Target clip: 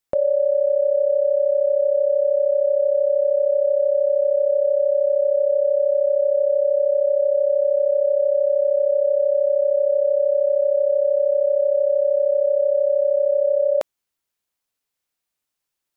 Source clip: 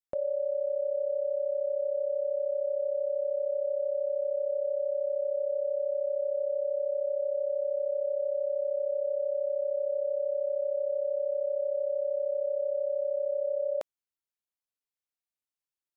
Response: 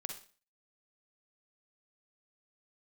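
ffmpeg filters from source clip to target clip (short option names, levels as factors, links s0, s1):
-af "acontrast=69,volume=1.78"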